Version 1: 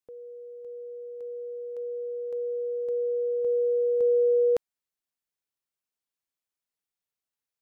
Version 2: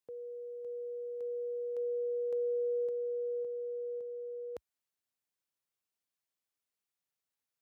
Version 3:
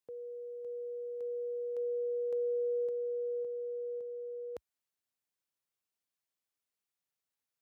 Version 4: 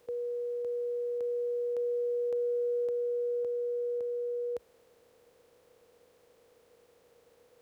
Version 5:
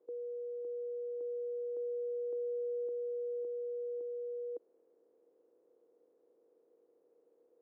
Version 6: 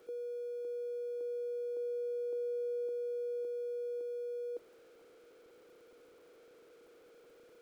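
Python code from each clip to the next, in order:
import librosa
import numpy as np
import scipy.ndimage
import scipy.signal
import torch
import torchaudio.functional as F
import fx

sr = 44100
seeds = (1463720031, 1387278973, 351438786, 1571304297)

y1 = scipy.signal.sosfilt(scipy.signal.butter(4, 62.0, 'highpass', fs=sr, output='sos'), x)
y1 = fx.over_compress(y1, sr, threshold_db=-31.0, ratio=-1.0)
y1 = F.gain(torch.from_numpy(y1), -5.0).numpy()
y2 = y1
y3 = fx.bin_compress(y2, sr, power=0.4)
y3 = F.gain(torch.from_numpy(y3), 2.0).numpy()
y4 = fx.ladder_bandpass(y3, sr, hz=380.0, resonance_pct=60)
y4 = F.gain(torch.from_numpy(y4), 3.0).numpy()
y5 = y4 + 0.5 * 10.0 ** (-57.0 / 20.0) * np.sign(y4)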